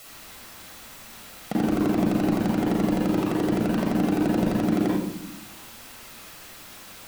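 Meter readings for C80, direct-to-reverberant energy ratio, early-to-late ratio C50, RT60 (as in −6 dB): 4.0 dB, −4.5 dB, −0.5 dB, 0.80 s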